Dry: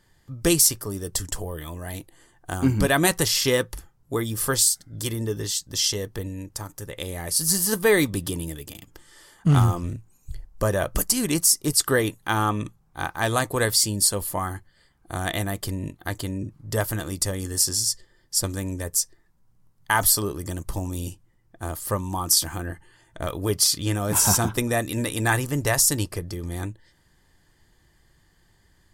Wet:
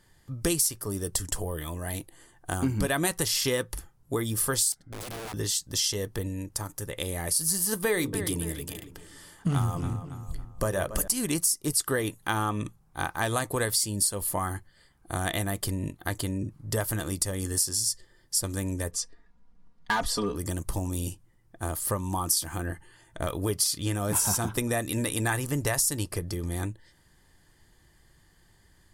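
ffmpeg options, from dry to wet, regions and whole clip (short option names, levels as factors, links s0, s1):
-filter_complex "[0:a]asettb=1/sr,asplit=3[s0][s1][s2];[s0]atrim=end=4.724[s3];[s1]atrim=start=4.72:end=5.34,asetpts=PTS-STARTPTS,afade=t=in:d=0.004:c=qsin,afade=t=out:st=0.616:d=0.004:c=qsin,lowpass=f=1500:p=1,acompressor=threshold=0.0224:ratio=10:attack=3.2:release=140:knee=1:detection=peak,aeval=exprs='(mod(47.3*val(0)+1,2)-1)/47.3':c=same[s4];[s2]atrim=start=5.336[s5];[s3][s4]acrossfade=d=0.004:c1=hsin:c2=qsin[s6];[s6][s5]acrossfade=d=0.004:c1=qsin:c2=hsin,asettb=1/sr,asplit=3[s7][s8][s9];[s7]atrim=end=7.854[s10];[s8]atrim=start=7.85:end=11.08,asetpts=PTS-STARTPTS,afade=t=in:d=0.004:c=qsin,afade=t=out:st=3.226:d=0.004:c=qsin,bandreject=f=50:t=h:w=6,bandreject=f=100:t=h:w=6,bandreject=f=150:t=h:w=6,bandreject=f=200:t=h:w=6,bandreject=f=250:t=h:w=6,bandreject=f=300:t=h:w=6,bandreject=f=350:t=h:w=6,bandreject=f=400:t=h:w=6,bandreject=f=450:t=h:w=6,bandreject=f=500:t=h:w=6,asplit=2[s11][s12];[s12]adelay=278,lowpass=f=3500:p=1,volume=0.178,asplit=2[s13][s14];[s14]adelay=278,lowpass=f=3500:p=1,volume=0.4,asplit=2[s15][s16];[s16]adelay=278,lowpass=f=3500:p=1,volume=0.4,asplit=2[s17][s18];[s18]adelay=278,lowpass=f=3500:p=1,volume=0.4[s19];[s11][s13][s15][s17][s19]amix=inputs=5:normalize=0,atrim=end_sample=142443[s20];[s9]atrim=start=11.076[s21];[s10][s20]acrossfade=d=0.004:c1=hsin:c2=qsin[s22];[s22][s21]acrossfade=d=0.004:c1=qsin:c2=hsin,asettb=1/sr,asplit=3[s23][s24][s25];[s23]atrim=end=18.914[s26];[s24]atrim=start=18.91:end=20.36,asetpts=PTS-STARTPTS,afade=t=in:d=0.004:c=qsin,afade=t=out:st=1.446:d=0.004:c=qsin,lowpass=4000,asoftclip=type=hard:threshold=0.133,aecho=1:1:4.2:0.96,atrim=end_sample=63945[s27];[s25]atrim=start=20.356[s28];[s26][s27]acrossfade=d=0.004:c1=hsin:c2=qsin[s29];[s29][s28]acrossfade=d=0.004:c1=qsin:c2=hsin,equalizer=f=10000:t=o:w=0.43:g=5,acompressor=threshold=0.0562:ratio=3"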